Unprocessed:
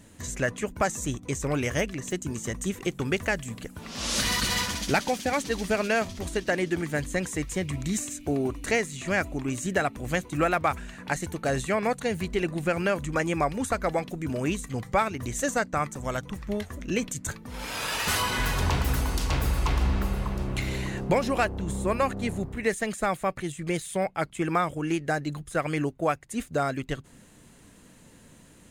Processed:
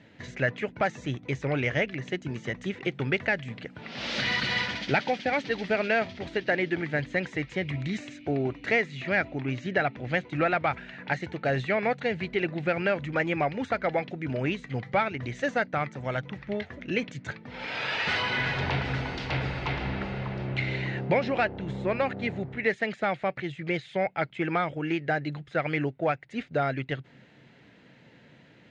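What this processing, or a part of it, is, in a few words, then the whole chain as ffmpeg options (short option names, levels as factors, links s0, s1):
overdrive pedal into a guitar cabinet: -filter_complex "[0:a]asettb=1/sr,asplit=3[s0][s1][s2];[s0]atrim=end=9.024[s3];[s1]atrim=start=9.02:end=10.18,asetpts=PTS-STARTPTS,afade=t=in:d=0.004:c=qsin,afade=t=out:st=1.156:d=0.004:c=qsin,lowpass=f=6700:w=0.5412,lowpass=f=6700:w=1.3066[s4];[s2]atrim=start=10.176[s5];[s3][s4]acrossfade=d=0.004:c1=hsin:c2=qsin[s6];[s6][s5]acrossfade=d=0.004:c1=qsin:c2=hsin,asplit=2[s7][s8];[s8]highpass=f=720:p=1,volume=2.51,asoftclip=type=tanh:threshold=0.251[s9];[s7][s9]amix=inputs=2:normalize=0,lowpass=f=2400:p=1,volume=0.501,highpass=100,equalizer=f=130:t=q:w=4:g=9,equalizer=f=1100:t=q:w=4:g=-10,equalizer=f=2100:t=q:w=4:g=4,lowpass=f=4500:w=0.5412,lowpass=f=4500:w=1.3066"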